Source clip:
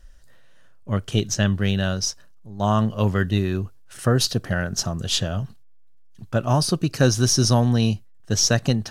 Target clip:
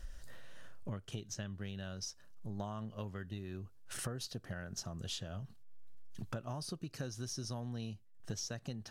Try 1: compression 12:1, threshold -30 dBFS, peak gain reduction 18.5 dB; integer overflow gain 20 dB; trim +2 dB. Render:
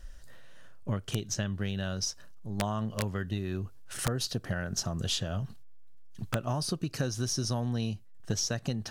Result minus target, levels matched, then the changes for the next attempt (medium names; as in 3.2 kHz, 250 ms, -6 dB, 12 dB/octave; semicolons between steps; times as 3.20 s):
compression: peak gain reduction -10.5 dB
change: compression 12:1, threshold -41.5 dBFS, peak gain reduction 29 dB